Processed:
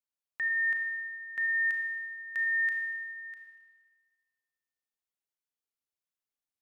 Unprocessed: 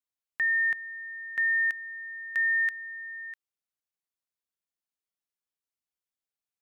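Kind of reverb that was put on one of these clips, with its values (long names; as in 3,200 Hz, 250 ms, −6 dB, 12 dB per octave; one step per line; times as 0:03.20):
four-comb reverb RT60 1.5 s, combs from 26 ms, DRR 2.5 dB
level −5.5 dB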